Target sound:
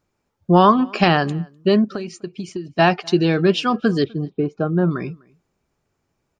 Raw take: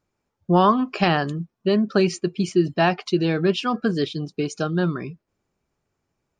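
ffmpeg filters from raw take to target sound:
-filter_complex "[0:a]asettb=1/sr,asplit=3[s0][s1][s2];[s0]atrim=end=1.844[s3];[s1]atrim=start=1.84:end=2.79,asetpts=PTS-STARTPTS,afade=t=in:d=0.004:c=qsin,afade=t=out:st=0.946:d=0.004:c=qsin,acompressor=threshold=0.0316:ratio=8[s4];[s2]atrim=start=2.786[s5];[s3][s4]acrossfade=d=0.004:c1=hsin:c2=qsin[s6];[s6][s5]acrossfade=d=0.004:c1=qsin:c2=hsin,asplit=3[s7][s8][s9];[s7]afade=t=out:st=4.03:d=0.02[s10];[s8]lowpass=1100,afade=t=in:st=4.03:d=0.02,afade=t=out:st=4.9:d=0.02[s11];[s9]afade=t=in:st=4.9:d=0.02[s12];[s10][s11][s12]amix=inputs=3:normalize=0,asplit=2[s13][s14];[s14]adelay=250.7,volume=0.0447,highshelf=f=4000:g=-5.64[s15];[s13][s15]amix=inputs=2:normalize=0,volume=1.58"

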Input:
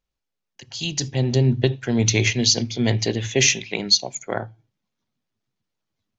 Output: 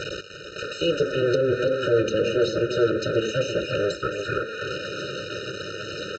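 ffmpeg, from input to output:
-filter_complex "[0:a]aeval=exprs='val(0)+0.5*0.075*sgn(val(0))':c=same,acrossover=split=850[s0][s1];[s1]acompressor=threshold=0.02:ratio=6[s2];[s0][s2]amix=inputs=2:normalize=0,alimiter=limit=0.15:level=0:latency=1:release=125,aresample=16000,aeval=exprs='abs(val(0))':c=same,aresample=44100,highpass=170,lowpass=3800,aecho=1:1:2.1:0.97,asplit=2[s3][s4];[s4]adelay=338.2,volume=0.398,highshelf=f=4000:g=-7.61[s5];[s3][s5]amix=inputs=2:normalize=0,afftfilt=real='re*eq(mod(floor(b*sr/1024/610),2),0)':imag='im*eq(mod(floor(b*sr/1024/610),2),0)':win_size=1024:overlap=0.75,volume=2.51"

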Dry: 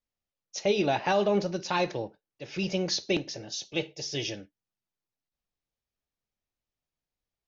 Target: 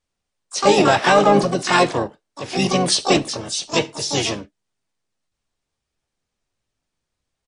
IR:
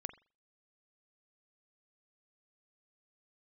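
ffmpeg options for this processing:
-filter_complex "[0:a]acontrast=80,asplit=4[s0][s1][s2][s3];[s1]asetrate=33038,aresample=44100,atempo=1.33484,volume=0.355[s4];[s2]asetrate=58866,aresample=44100,atempo=0.749154,volume=0.355[s5];[s3]asetrate=88200,aresample=44100,atempo=0.5,volume=0.631[s6];[s0][s4][s5][s6]amix=inputs=4:normalize=0,volume=1.41" -ar 22050 -c:a libmp3lame -b:a 48k

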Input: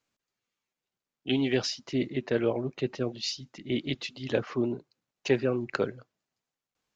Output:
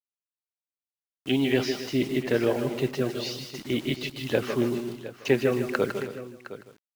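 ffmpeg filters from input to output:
-filter_complex "[0:a]acrossover=split=2800[s0][s1];[s1]acompressor=threshold=0.00398:ratio=4:attack=1:release=60[s2];[s0][s2]amix=inputs=2:normalize=0,highshelf=f=3600:g=10,asplit=2[s3][s4];[s4]aecho=0:1:158:0.251[s5];[s3][s5]amix=inputs=2:normalize=0,acrusher=bits=7:mix=0:aa=0.000001,asplit=2[s6][s7];[s7]aecho=0:1:153|268|712:0.335|0.188|0.188[s8];[s6][s8]amix=inputs=2:normalize=0,volume=1.33"

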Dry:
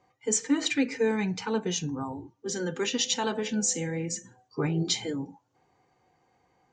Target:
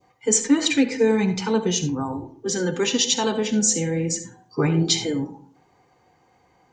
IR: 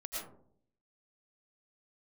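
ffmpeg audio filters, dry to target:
-filter_complex "[0:a]adynamicequalizer=threshold=0.00631:dfrequency=1500:dqfactor=0.82:tfrequency=1500:tqfactor=0.82:attack=5:release=100:ratio=0.375:range=3:mode=cutabove:tftype=bell,asplit=2[s0][s1];[1:a]atrim=start_sample=2205,asetrate=70560,aresample=44100[s2];[s1][s2]afir=irnorm=-1:irlink=0,volume=0.596[s3];[s0][s3]amix=inputs=2:normalize=0,volume=2"

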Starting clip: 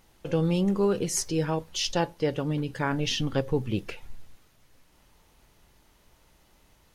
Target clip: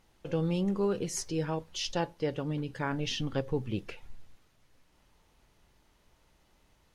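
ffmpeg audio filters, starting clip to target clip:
-af "highshelf=f=11000:g=-10,volume=0.562"

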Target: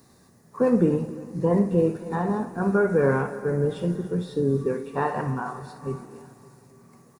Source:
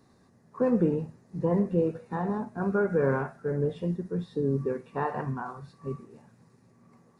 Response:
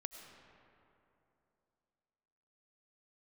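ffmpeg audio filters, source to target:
-filter_complex "[0:a]aemphasis=mode=production:type=50fm,aecho=1:1:280|560|840|1120|1400:0.126|0.068|0.0367|0.0198|0.0107,asplit=2[s0][s1];[1:a]atrim=start_sample=2205,adelay=61[s2];[s1][s2]afir=irnorm=-1:irlink=0,volume=0.376[s3];[s0][s3]amix=inputs=2:normalize=0,volume=1.68"

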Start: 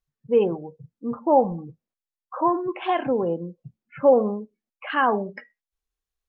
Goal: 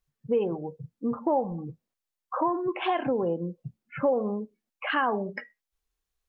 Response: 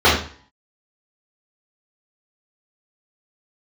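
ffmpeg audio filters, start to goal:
-af "acompressor=threshold=0.0355:ratio=3,volume=1.5"

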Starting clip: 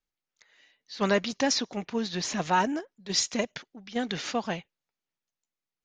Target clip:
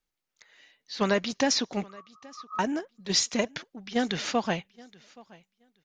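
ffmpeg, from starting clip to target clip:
-filter_complex "[0:a]alimiter=limit=0.158:level=0:latency=1:release=419,asettb=1/sr,asplit=3[s0][s1][s2];[s0]atrim=end=1.884[s3];[s1]atrim=start=1.88:end=2.59,asetpts=PTS-STARTPTS,afade=t=in:d=0.004:c=qsin,afade=t=out:st=0.706:d=0.004:c=qsin,asuperpass=centerf=1200:order=12:qfactor=7[s4];[s2]atrim=start=2.586[s5];[s3][s4]acrossfade=d=0.004:c1=hsin:c2=qsin[s6];[s6][s5]acrossfade=d=0.004:c1=qsin:c2=hsin,aecho=1:1:824|1648:0.0668|0.0107,volume=1.5"

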